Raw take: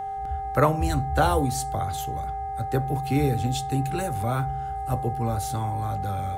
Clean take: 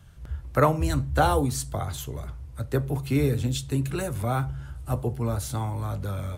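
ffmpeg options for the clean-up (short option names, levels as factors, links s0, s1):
-af "bandreject=f=414:t=h:w=4,bandreject=f=828:t=h:w=4,bandreject=f=1242:t=h:w=4,bandreject=f=1656:t=h:w=4,bandreject=f=2070:t=h:w=4,bandreject=f=780:w=30"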